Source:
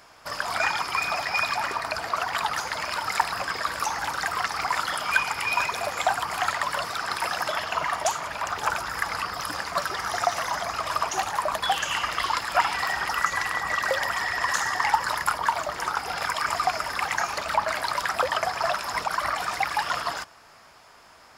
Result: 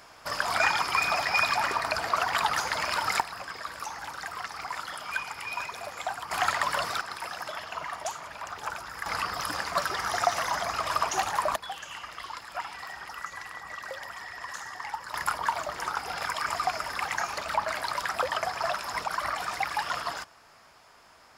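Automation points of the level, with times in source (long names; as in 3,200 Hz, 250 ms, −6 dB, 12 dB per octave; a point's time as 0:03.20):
+0.5 dB
from 0:03.20 −9.5 dB
from 0:06.31 −0.5 dB
from 0:07.01 −9 dB
from 0:09.06 −1 dB
from 0:11.56 −13.5 dB
from 0:15.14 −4 dB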